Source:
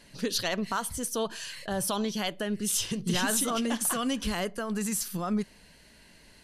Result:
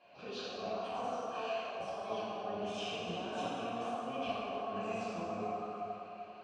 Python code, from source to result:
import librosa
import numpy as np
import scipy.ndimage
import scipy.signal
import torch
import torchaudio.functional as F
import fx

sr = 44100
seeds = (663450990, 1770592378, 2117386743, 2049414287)

y = fx.octave_divider(x, sr, octaves=1, level_db=-5.0)
y = fx.vowel_filter(y, sr, vowel='a')
y = fx.high_shelf(y, sr, hz=4100.0, db=-11.0)
y = fx.echo_alternate(y, sr, ms=192, hz=1000.0, feedback_pct=59, wet_db=-11.0)
y = fx.over_compress(y, sr, threshold_db=-50.0, ratio=-1.0)
y = scipy.signal.sosfilt(scipy.signal.butter(4, 7000.0, 'lowpass', fs=sr, output='sos'), y)
y = fx.low_shelf(y, sr, hz=170.0, db=-5.5)
y = fx.rev_plate(y, sr, seeds[0], rt60_s=2.6, hf_ratio=0.7, predelay_ms=0, drr_db=-9.5)
y = F.gain(torch.from_numpy(y), 1.0).numpy()